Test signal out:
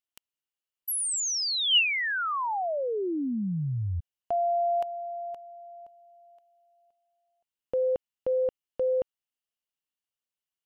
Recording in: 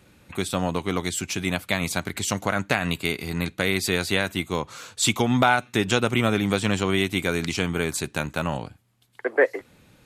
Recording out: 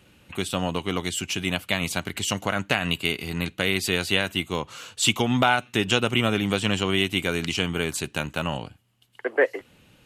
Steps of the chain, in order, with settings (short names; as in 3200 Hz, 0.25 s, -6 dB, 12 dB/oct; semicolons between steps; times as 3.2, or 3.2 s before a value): bell 2900 Hz +11 dB 0.23 oct; gain -1.5 dB